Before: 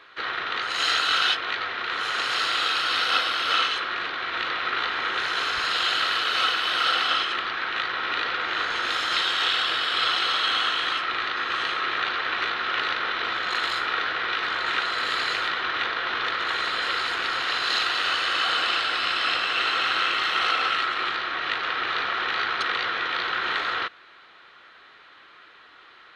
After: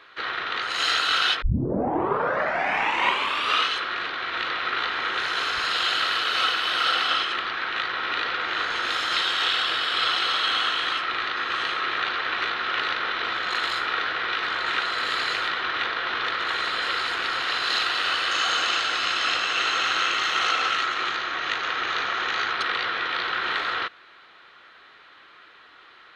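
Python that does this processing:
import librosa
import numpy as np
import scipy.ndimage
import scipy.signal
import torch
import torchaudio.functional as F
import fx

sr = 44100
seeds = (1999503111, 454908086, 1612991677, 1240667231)

y = fx.peak_eq(x, sr, hz=6500.0, db=13.5, octaves=0.25, at=(18.31, 22.52))
y = fx.edit(y, sr, fx.tape_start(start_s=1.42, length_s=2.27), tone=tone)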